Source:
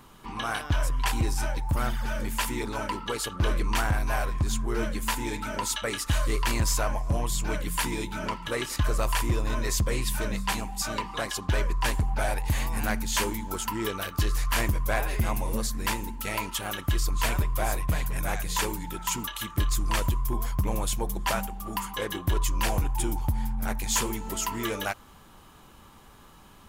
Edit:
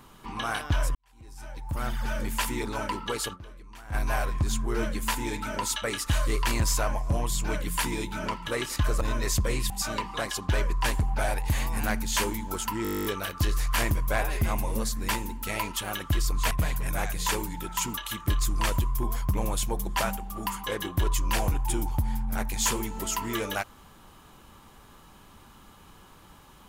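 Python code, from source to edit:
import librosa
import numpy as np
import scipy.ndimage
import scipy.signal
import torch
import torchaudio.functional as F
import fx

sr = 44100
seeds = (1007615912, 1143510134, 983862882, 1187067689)

y = fx.edit(x, sr, fx.fade_in_span(start_s=0.95, length_s=1.07, curve='qua'),
    fx.fade_down_up(start_s=3.33, length_s=0.62, db=-21.0, fade_s=0.25, curve='exp'),
    fx.cut(start_s=9.01, length_s=0.42),
    fx.cut(start_s=10.12, length_s=0.58),
    fx.stutter(start_s=13.83, slice_s=0.02, count=12),
    fx.cut(start_s=17.29, length_s=0.52), tone=tone)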